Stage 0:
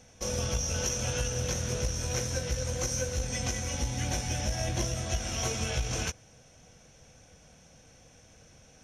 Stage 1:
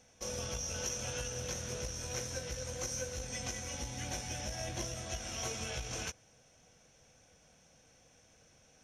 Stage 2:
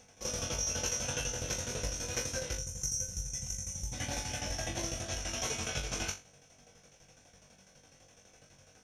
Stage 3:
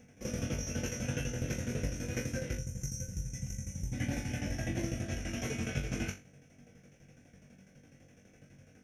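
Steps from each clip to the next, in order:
low-shelf EQ 210 Hz −6.5 dB; level −6 dB
gain on a spectral selection 0:02.58–0:03.93, 210–5,300 Hz −16 dB; shaped tremolo saw down 12 Hz, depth 80%; flutter between parallel walls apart 3.6 metres, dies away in 0.26 s; level +6 dB
octave-band graphic EQ 125/250/1,000/2,000/4,000/8,000 Hz +6/+9/−11/+6/−12/−7 dB

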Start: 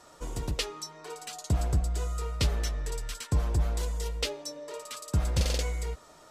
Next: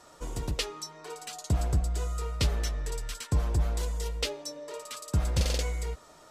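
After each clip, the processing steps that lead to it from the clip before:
no processing that can be heard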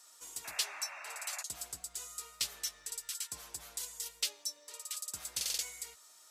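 first difference
sound drawn into the spectrogram noise, 0:00.44–0:01.43, 550–2,800 Hz −50 dBFS
parametric band 550 Hz −3.5 dB 0.41 octaves
level +3 dB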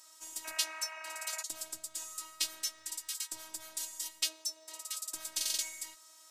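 phases set to zero 317 Hz
level +4 dB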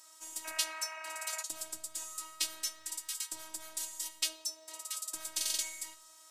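rectangular room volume 2,400 cubic metres, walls furnished, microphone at 0.63 metres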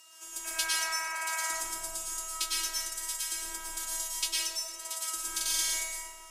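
dense smooth reverb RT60 1.8 s, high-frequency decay 0.4×, pre-delay 90 ms, DRR −6.5 dB
steady tone 2,800 Hz −59 dBFS
frequency shifter +18 Hz

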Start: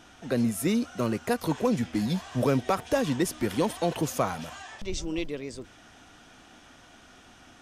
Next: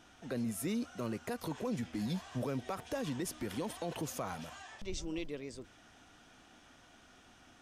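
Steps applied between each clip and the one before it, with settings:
brickwall limiter −21 dBFS, peak gain reduction 6.5 dB
level −7.5 dB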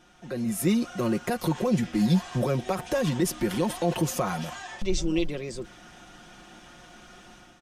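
low-shelf EQ 390 Hz +3 dB
comb filter 5.6 ms, depth 67%
automatic gain control gain up to 9 dB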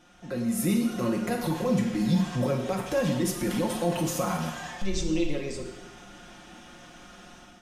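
in parallel at +0.5 dB: brickwall limiter −23 dBFS, peak gain reduction 10 dB
on the sum: convolution reverb, pre-delay 3 ms, DRR 1.5 dB
level −7.5 dB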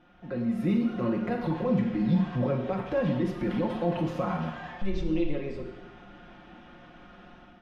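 high-frequency loss of the air 370 metres

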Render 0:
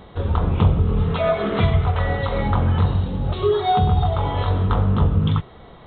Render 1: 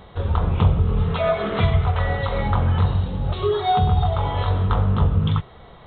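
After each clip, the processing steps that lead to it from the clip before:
parametric band 280 Hz −5.5 dB 1.1 octaves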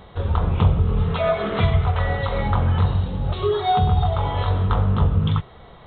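no processing that can be heard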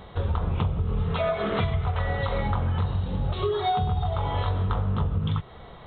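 downward compressor, threshold −22 dBFS, peak gain reduction 11 dB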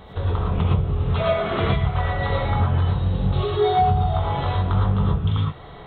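reverb whose tail is shaped and stops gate 140 ms rising, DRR −3 dB

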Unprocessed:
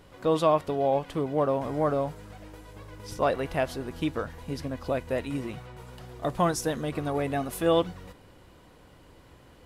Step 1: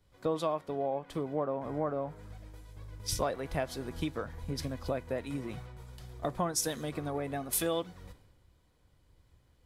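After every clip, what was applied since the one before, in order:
notch filter 2,800 Hz, Q 11
downward compressor 6 to 1, threshold −33 dBFS, peak gain reduction 14.5 dB
multiband upward and downward expander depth 100%
level +2 dB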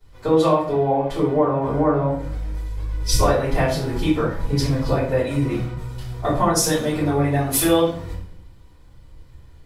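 convolution reverb RT60 0.50 s, pre-delay 3 ms, DRR −14 dB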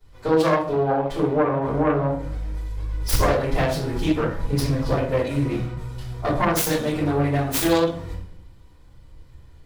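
phase distortion by the signal itself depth 0.28 ms
level −1.5 dB

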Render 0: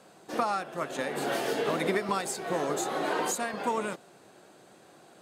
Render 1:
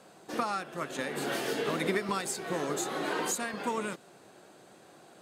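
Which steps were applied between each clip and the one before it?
dynamic equaliser 700 Hz, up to −6 dB, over −44 dBFS, Q 1.2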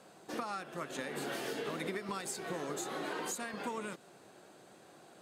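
downward compressor 3 to 1, threshold −34 dBFS, peak gain reduction 7.5 dB
level −2.5 dB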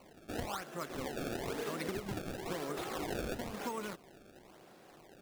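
sample-and-hold swept by an LFO 25×, swing 160% 1 Hz

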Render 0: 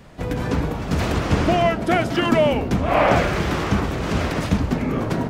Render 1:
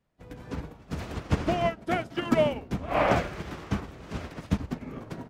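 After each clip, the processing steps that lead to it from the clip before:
expander for the loud parts 2.5 to 1, over −32 dBFS
level −4.5 dB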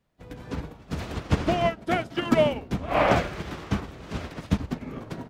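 parametric band 3,700 Hz +2.5 dB
level +2.5 dB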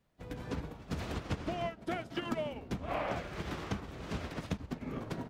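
downward compressor 6 to 1, threshold −32 dBFS, peak gain reduction 16 dB
level −1.5 dB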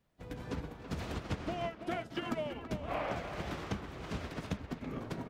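far-end echo of a speakerphone 330 ms, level −8 dB
level −1 dB

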